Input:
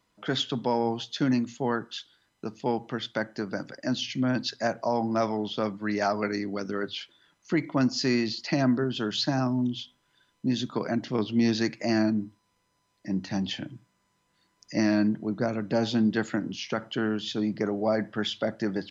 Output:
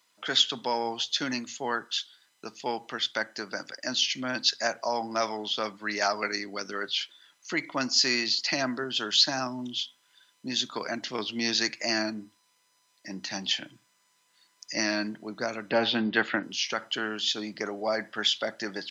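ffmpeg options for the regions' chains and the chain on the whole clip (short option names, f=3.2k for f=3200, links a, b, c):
-filter_complex "[0:a]asettb=1/sr,asplit=3[a][b][c];[a]atrim=end=15.704[d];[b]atrim=start=15.7:end=16.43,asetpts=PTS-STARTPTS,afade=t=in:d=0.004:c=qsin,afade=t=out:st=0.726:d=0.004:c=qsin,lowpass=f=3.4k:w=0.5412,lowpass=f=3.4k:w=1.3066,acontrast=28[e];[c]atrim=start=16.426[f];[d][e]acrossfade=d=0.004:c1=hsin:c2=qsin[g];[g][f]acrossfade=d=0.004:c1=qsin:c2=hsin,highpass=f=810:p=1,highshelf=f=2.1k:g=9,volume=1dB"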